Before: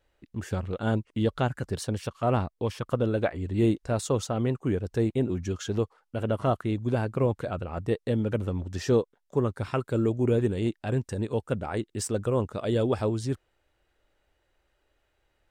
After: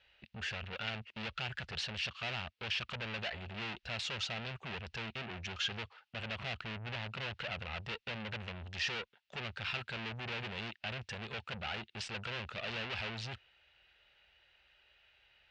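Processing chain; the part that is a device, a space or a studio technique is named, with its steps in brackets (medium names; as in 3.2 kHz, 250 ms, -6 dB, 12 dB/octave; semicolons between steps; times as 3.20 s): 6.37–7.08 s: tilt shelf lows +5.5 dB, about 790 Hz; scooped metal amplifier (valve stage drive 40 dB, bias 0.3; cabinet simulation 90–4200 Hz, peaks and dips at 95 Hz -6 dB, 220 Hz +7 dB, 360 Hz +5 dB, 1.1 kHz -6 dB, 2.7 kHz +7 dB; amplifier tone stack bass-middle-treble 10-0-10); trim +13.5 dB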